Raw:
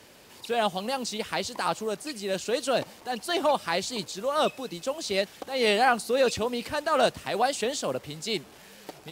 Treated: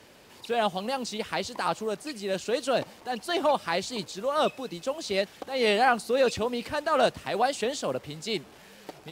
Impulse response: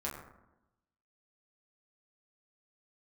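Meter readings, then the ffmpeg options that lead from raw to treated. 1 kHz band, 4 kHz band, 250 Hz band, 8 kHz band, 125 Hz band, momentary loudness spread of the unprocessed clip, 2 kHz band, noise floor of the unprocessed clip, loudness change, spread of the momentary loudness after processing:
0.0 dB, −2.0 dB, 0.0 dB, −4.0 dB, 0.0 dB, 9 LU, −0.5 dB, −51 dBFS, −0.5 dB, 10 LU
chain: -af "highshelf=frequency=5000:gain=-5.5"

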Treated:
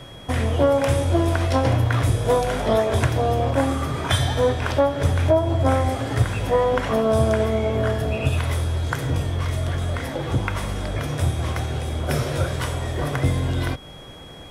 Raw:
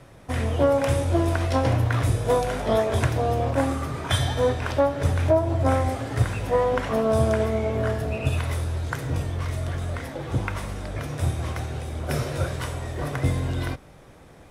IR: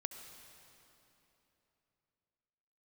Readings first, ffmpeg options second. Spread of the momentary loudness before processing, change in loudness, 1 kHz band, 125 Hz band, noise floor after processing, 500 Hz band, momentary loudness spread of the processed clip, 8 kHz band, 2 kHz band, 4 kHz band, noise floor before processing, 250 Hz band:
9 LU, +3.0 dB, +2.5 dB, +3.0 dB, −40 dBFS, +2.5 dB, 7 LU, +3.0 dB, +3.0 dB, +4.5 dB, −48 dBFS, +2.5 dB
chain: -filter_complex "[0:a]asplit=2[link_01][link_02];[link_02]acompressor=threshold=-32dB:ratio=6,volume=2.5dB[link_03];[link_01][link_03]amix=inputs=2:normalize=0,aeval=exprs='val(0)+0.00631*sin(2*PI*3300*n/s)':channel_layout=same"

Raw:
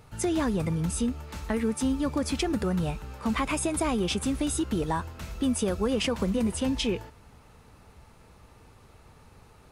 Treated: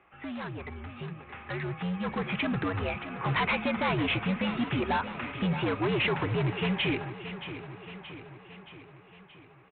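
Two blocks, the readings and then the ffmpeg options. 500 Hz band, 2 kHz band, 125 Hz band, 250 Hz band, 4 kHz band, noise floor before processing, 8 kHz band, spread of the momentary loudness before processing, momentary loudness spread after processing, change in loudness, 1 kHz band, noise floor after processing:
−3.0 dB, +6.5 dB, +0.5 dB, −4.5 dB, −0.5 dB, −55 dBFS, below −40 dB, 4 LU, 16 LU, −2.0 dB, +2.0 dB, −55 dBFS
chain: -af "tiltshelf=frequency=1100:gain=-7,bandreject=frequency=60:width_type=h:width=6,bandreject=frequency=120:width_type=h:width=6,bandreject=frequency=180:width_type=h:width=6,bandreject=frequency=240:width_type=h:width=6,bandreject=frequency=300:width_type=h:width=6,highpass=frequency=180:width_type=q:width=0.5412,highpass=frequency=180:width_type=q:width=1.307,lowpass=frequency=2700:width_type=q:width=0.5176,lowpass=frequency=2700:width_type=q:width=0.7071,lowpass=frequency=2700:width_type=q:width=1.932,afreqshift=-83,aresample=8000,asoftclip=type=hard:threshold=-31.5dB,aresample=44100,dynaudnorm=framelen=230:gausssize=17:maxgain=10dB,aecho=1:1:625|1250|1875|2500|3125|3750:0.251|0.143|0.0816|0.0465|0.0265|0.0151,volume=-3dB"

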